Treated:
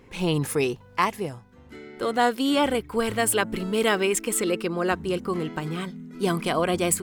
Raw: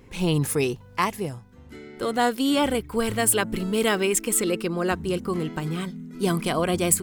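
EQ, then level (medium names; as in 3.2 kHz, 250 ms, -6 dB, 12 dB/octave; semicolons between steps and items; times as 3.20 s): bass shelf 240 Hz -7 dB; treble shelf 4.8 kHz -7 dB; +2.0 dB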